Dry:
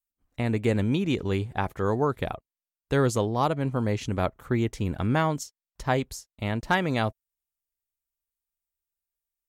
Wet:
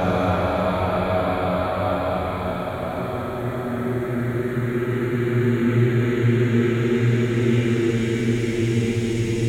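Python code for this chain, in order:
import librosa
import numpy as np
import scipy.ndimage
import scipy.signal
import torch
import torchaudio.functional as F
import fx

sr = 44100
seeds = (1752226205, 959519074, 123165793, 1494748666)

y = fx.paulstretch(x, sr, seeds[0], factor=19.0, window_s=0.5, from_s=4.21)
y = fx.room_flutter(y, sr, wall_m=8.6, rt60_s=0.46)
y = y * librosa.db_to_amplitude(5.5)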